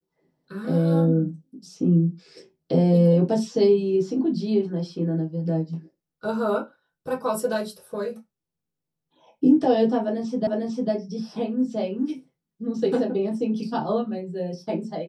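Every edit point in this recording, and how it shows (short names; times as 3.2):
10.47 repeat of the last 0.45 s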